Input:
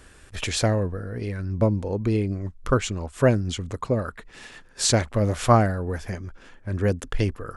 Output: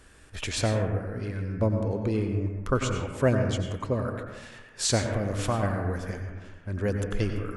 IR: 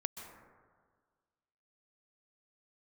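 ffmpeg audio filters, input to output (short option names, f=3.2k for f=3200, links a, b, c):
-filter_complex "[0:a]asettb=1/sr,asplit=3[a][b][c];[a]atrim=end=5.014[d];[b]atrim=start=5.01:end=5.63,asetpts=PTS-STARTPTS,afade=t=in:d=0.004:c=qsin,afade=t=out:st=0.616:d=0.004:c=qsin,acompressor=threshold=-20dB:ratio=6[e];[c]atrim=start=5.626[f];[d][e]acrossfade=d=0.004:c1=hsin:c2=qsin[g];[g][f]acrossfade=d=0.004:c1=qsin:c2=hsin[h];[1:a]atrim=start_sample=2205,asetrate=61740,aresample=44100[i];[h][i]afir=irnorm=-1:irlink=0"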